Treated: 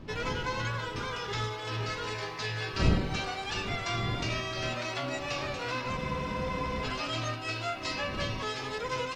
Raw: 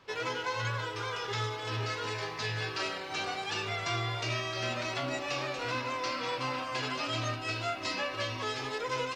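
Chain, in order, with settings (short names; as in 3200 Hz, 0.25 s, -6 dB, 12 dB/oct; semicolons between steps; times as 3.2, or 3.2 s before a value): wind noise 210 Hz -38 dBFS; spectral freeze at 6, 0.84 s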